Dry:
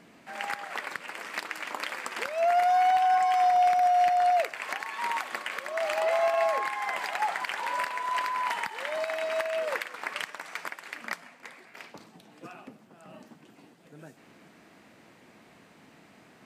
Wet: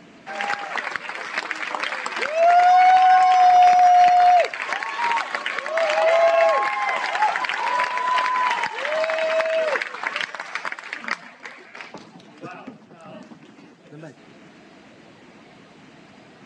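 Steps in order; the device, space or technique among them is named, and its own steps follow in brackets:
clip after many re-uploads (low-pass filter 6,900 Hz 24 dB per octave; spectral magnitudes quantised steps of 15 dB)
level +9 dB

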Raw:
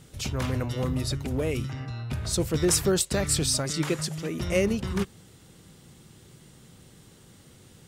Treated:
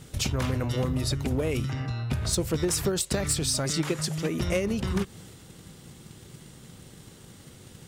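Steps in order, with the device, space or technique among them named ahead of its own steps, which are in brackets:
drum-bus smash (transient designer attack +7 dB, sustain +3 dB; downward compressor 6 to 1, threshold −25 dBFS, peak gain reduction 10 dB; soft clipping −18.5 dBFS, distortion −22 dB)
level +3 dB

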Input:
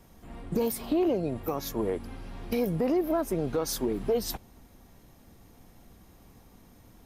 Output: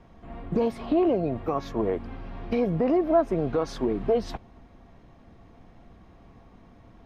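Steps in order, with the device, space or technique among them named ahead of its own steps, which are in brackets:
inside a cardboard box (low-pass filter 2,800 Hz 12 dB per octave; hollow resonant body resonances 680/1,100 Hz, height 8 dB, ringing for 85 ms)
level +3 dB

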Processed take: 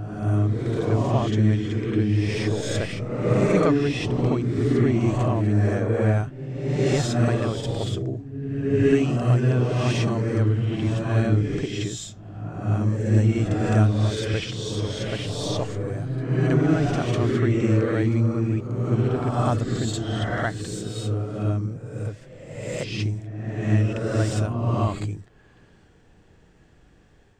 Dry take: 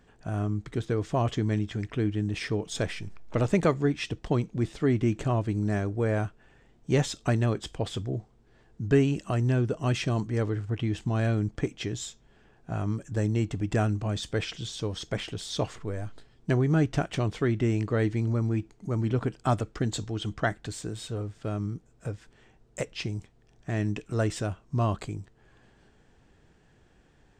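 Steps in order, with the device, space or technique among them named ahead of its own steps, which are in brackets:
reverse reverb (reversed playback; convolution reverb RT60 1.3 s, pre-delay 36 ms, DRR −2.5 dB; reversed playback)

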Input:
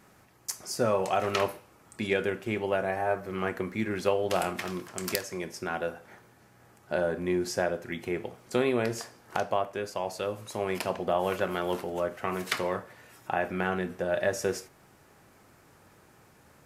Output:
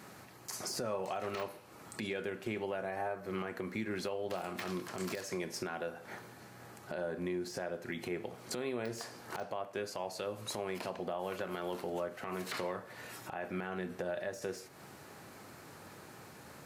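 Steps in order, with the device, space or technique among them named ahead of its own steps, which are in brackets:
broadcast voice chain (high-pass filter 100 Hz; de-essing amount 90%; downward compressor 5 to 1, threshold −41 dBFS, peak gain reduction 18 dB; parametric band 4,200 Hz +5 dB 0.23 octaves; brickwall limiter −32.5 dBFS, peak gain reduction 11 dB)
level +6 dB

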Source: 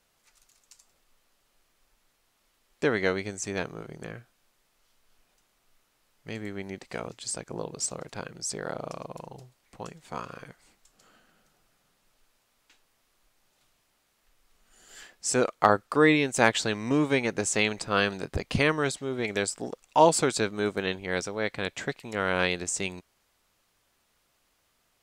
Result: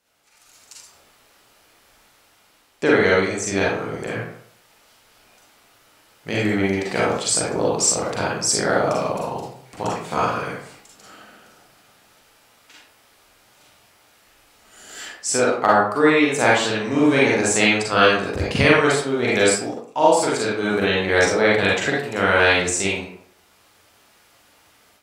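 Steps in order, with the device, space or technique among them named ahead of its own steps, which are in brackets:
far laptop microphone (convolution reverb RT60 0.60 s, pre-delay 37 ms, DRR −5.5 dB; high-pass filter 140 Hz 6 dB per octave; automatic gain control)
level −1 dB

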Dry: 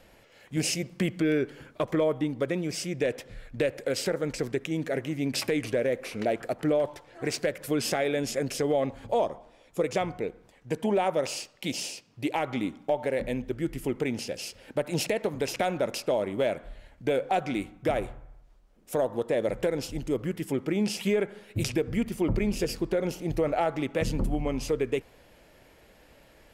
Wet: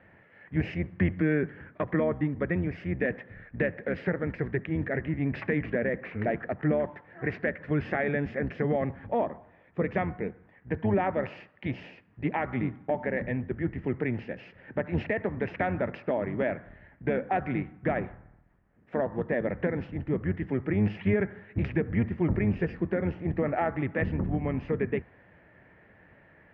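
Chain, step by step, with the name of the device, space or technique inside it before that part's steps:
sub-octave bass pedal (sub-octave generator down 1 octave, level −1 dB; loudspeaker in its box 74–2,200 Hz, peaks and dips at 93 Hz +3 dB, 180 Hz +4 dB, 520 Hz −3 dB, 1,800 Hz +10 dB)
level −1.5 dB

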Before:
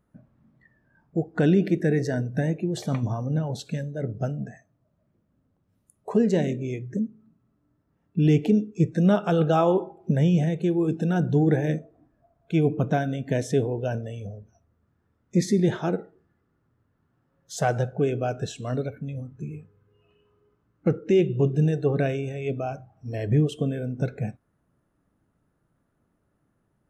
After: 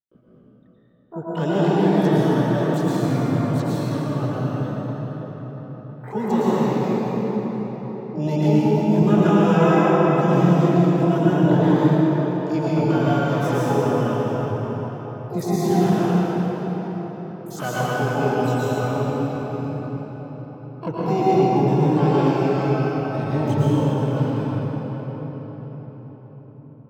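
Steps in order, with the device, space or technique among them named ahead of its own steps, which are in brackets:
noise gate −54 dBFS, range −32 dB
shimmer-style reverb (pitch-shifted copies added +12 semitones −5 dB; convolution reverb RT60 5.4 s, pre-delay 104 ms, DRR −9.5 dB)
level −6.5 dB

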